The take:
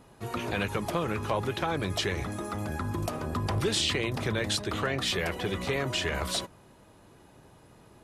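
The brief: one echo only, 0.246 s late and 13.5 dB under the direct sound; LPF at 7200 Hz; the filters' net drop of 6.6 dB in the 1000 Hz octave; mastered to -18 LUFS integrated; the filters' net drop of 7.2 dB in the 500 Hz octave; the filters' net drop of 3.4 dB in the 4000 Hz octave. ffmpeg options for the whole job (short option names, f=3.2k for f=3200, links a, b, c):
-af "lowpass=7.2k,equalizer=f=500:t=o:g=-8,equalizer=f=1k:t=o:g=-6,equalizer=f=4k:t=o:g=-3.5,aecho=1:1:246:0.211,volume=15dB"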